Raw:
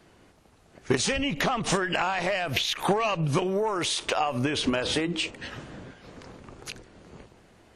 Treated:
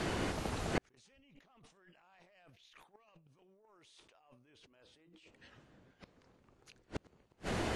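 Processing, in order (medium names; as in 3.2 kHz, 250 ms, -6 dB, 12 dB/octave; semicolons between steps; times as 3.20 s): Bessel low-pass 9.4 kHz; compressor with a negative ratio -36 dBFS, ratio -1; inverted gate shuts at -33 dBFS, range -42 dB; trim +13 dB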